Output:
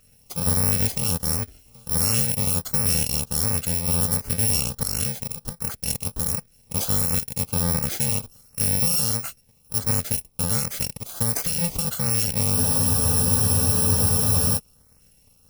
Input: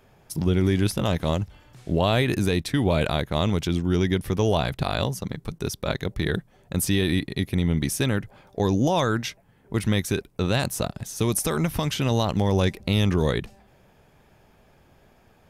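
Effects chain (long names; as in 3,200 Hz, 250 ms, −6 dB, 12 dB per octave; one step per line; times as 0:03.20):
samples in bit-reversed order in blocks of 128 samples
auto-filter notch saw up 1.4 Hz 870–3,700 Hz
frozen spectrum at 0:12.58, 1.99 s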